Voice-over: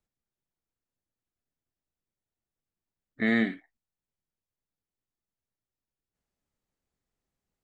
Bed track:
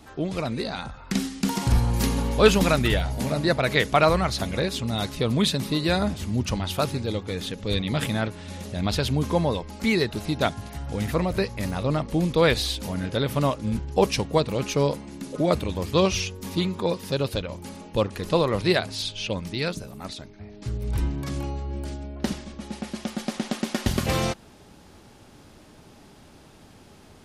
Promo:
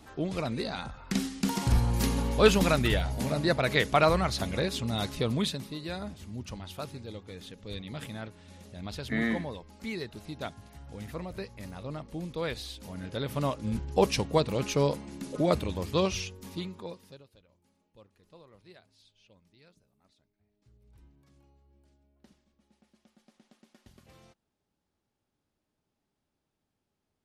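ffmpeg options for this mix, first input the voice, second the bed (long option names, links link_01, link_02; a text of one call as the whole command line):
ffmpeg -i stem1.wav -i stem2.wav -filter_complex "[0:a]adelay=5900,volume=-4.5dB[link_01];[1:a]volume=6.5dB,afade=type=out:start_time=5.19:duration=0.5:silence=0.316228,afade=type=in:start_time=12.76:duration=1.24:silence=0.298538,afade=type=out:start_time=15.5:duration=1.75:silence=0.0334965[link_02];[link_01][link_02]amix=inputs=2:normalize=0" out.wav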